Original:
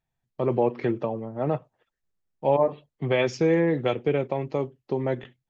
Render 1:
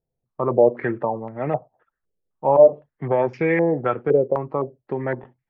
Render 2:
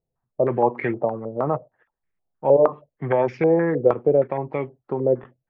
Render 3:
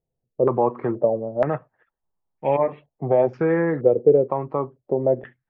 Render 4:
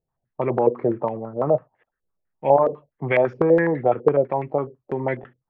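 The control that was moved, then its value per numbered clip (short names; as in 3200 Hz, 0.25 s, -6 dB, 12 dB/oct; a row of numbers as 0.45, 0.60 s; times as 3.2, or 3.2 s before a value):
stepped low-pass, rate: 3.9, 6.4, 2.1, 12 Hz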